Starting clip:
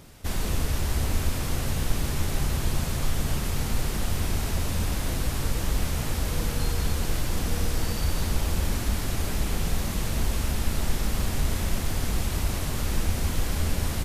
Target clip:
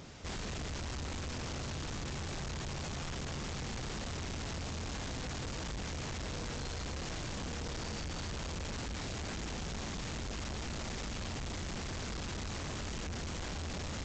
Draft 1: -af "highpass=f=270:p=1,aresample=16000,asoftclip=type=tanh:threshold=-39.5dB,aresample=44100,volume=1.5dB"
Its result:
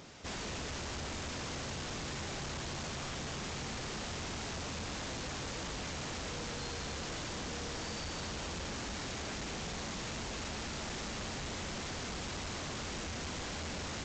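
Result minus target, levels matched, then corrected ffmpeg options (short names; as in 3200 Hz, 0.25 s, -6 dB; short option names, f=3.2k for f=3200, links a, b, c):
125 Hz band -4.0 dB
-af "highpass=f=81:p=1,aresample=16000,asoftclip=type=tanh:threshold=-39.5dB,aresample=44100,volume=1.5dB"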